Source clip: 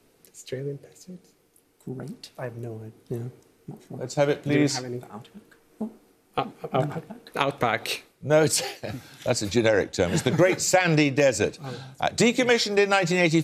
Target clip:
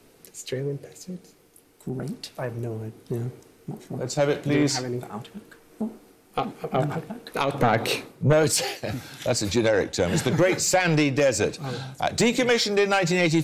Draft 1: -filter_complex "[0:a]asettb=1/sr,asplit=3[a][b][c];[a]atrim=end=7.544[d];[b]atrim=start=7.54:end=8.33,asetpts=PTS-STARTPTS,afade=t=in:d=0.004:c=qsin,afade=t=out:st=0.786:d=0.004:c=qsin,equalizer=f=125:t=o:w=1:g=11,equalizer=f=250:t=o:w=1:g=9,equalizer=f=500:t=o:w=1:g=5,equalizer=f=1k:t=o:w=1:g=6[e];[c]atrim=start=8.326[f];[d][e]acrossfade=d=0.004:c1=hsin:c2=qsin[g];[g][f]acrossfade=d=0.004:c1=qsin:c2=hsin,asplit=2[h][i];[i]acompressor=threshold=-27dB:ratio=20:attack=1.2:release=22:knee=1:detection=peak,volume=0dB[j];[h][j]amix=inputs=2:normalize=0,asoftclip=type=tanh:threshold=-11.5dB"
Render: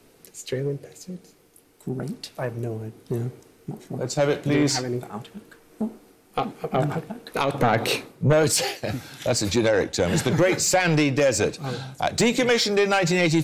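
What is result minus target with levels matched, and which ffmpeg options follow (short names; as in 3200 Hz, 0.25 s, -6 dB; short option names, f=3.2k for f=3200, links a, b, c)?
compressor: peak gain reduction -6.5 dB
-filter_complex "[0:a]asettb=1/sr,asplit=3[a][b][c];[a]atrim=end=7.544[d];[b]atrim=start=7.54:end=8.33,asetpts=PTS-STARTPTS,afade=t=in:d=0.004:c=qsin,afade=t=out:st=0.786:d=0.004:c=qsin,equalizer=f=125:t=o:w=1:g=11,equalizer=f=250:t=o:w=1:g=9,equalizer=f=500:t=o:w=1:g=5,equalizer=f=1k:t=o:w=1:g=6[e];[c]atrim=start=8.326[f];[d][e]acrossfade=d=0.004:c1=hsin:c2=qsin[g];[g][f]acrossfade=d=0.004:c1=qsin:c2=hsin,asplit=2[h][i];[i]acompressor=threshold=-34dB:ratio=20:attack=1.2:release=22:knee=1:detection=peak,volume=0dB[j];[h][j]amix=inputs=2:normalize=0,asoftclip=type=tanh:threshold=-11.5dB"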